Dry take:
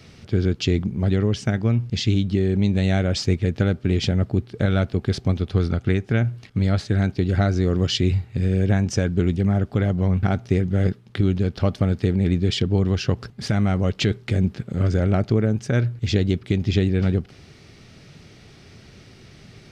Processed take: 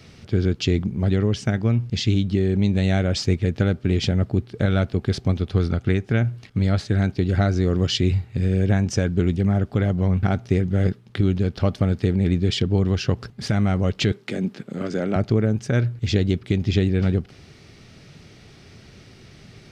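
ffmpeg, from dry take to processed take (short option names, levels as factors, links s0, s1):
-filter_complex "[0:a]asettb=1/sr,asplit=3[s0][s1][s2];[s0]atrim=end=14.124[s3];[s1]atrim=start=14.12:end=15.16,asetpts=PTS-STARTPTS,afade=t=in:d=0.004:c=qsin,afade=t=out:st=1.036:d=0.004:c=qsin,highpass=f=180:w=0.5412,highpass=f=180:w=1.3066[s4];[s2]atrim=start=15.156[s5];[s3][s4]acrossfade=d=0.004:c1=hsin:c2=qsin[s6];[s6][s5]acrossfade=d=0.004:c1=qsin:c2=hsin"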